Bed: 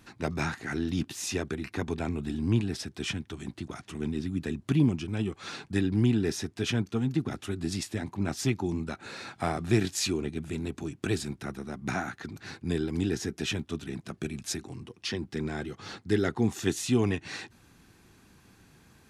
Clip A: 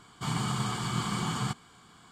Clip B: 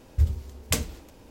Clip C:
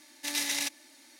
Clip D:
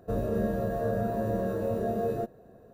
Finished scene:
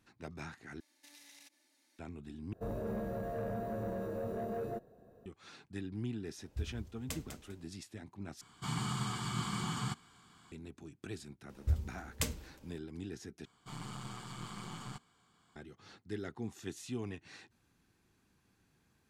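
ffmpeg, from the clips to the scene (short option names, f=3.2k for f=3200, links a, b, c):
-filter_complex "[2:a]asplit=2[a][b];[1:a]asplit=2[c][d];[0:a]volume=-15dB[e];[3:a]acompressor=threshold=-38dB:ratio=6:attack=3.2:release=140:knee=1:detection=peak[f];[4:a]asoftclip=type=tanh:threshold=-25dB[g];[a]aecho=1:1:199|398|597:0.355|0.0639|0.0115[h];[c]equalizer=f=550:w=2:g=-7[i];[b]asuperstop=centerf=690:order=4:qfactor=7[j];[d]aeval=exprs='(tanh(20*val(0)+0.65)-tanh(0.65))/20':c=same[k];[e]asplit=5[l][m][n][o][p];[l]atrim=end=0.804[q];[f]atrim=end=1.19,asetpts=PTS-STARTPTS,volume=-17dB[r];[m]atrim=start=1.986:end=2.534[s];[g]atrim=end=2.73,asetpts=PTS-STARTPTS,volume=-7dB[t];[n]atrim=start=5.256:end=8.414[u];[i]atrim=end=2.11,asetpts=PTS-STARTPTS,volume=-5.5dB[v];[o]atrim=start=10.516:end=13.454[w];[k]atrim=end=2.11,asetpts=PTS-STARTPTS,volume=-11dB[x];[p]atrim=start=15.556[y];[h]atrim=end=1.3,asetpts=PTS-STARTPTS,volume=-17dB,afade=t=in:d=0.004:c=hsin,afade=t=out:st=1.296:d=0.004:c=hsin,adelay=6380[z];[j]atrim=end=1.3,asetpts=PTS-STARTPTS,volume=-9.5dB,afade=t=in:d=0.004:c=hsin,afade=t=out:st=1.296:d=0.004:c=hsin,adelay=11490[aa];[q][r]acrossfade=d=0.004:c1=hsin:c2=hsin[ab];[ab][s]acrossfade=d=0.004:c1=hsin:c2=hsin[ac];[ac][t]acrossfade=d=0.004:c1=hsin:c2=hsin[ad];[ad][u]acrossfade=d=0.004:c1=hsin:c2=hsin[ae];[ae][v]acrossfade=d=0.004:c1=hsin:c2=hsin[af];[af][w]acrossfade=d=0.004:c1=hsin:c2=hsin[ag];[ag][x]acrossfade=d=0.004:c1=hsin:c2=hsin[ah];[ah][y]acrossfade=d=0.004:c1=hsin:c2=hsin[ai];[ai][z][aa]amix=inputs=3:normalize=0"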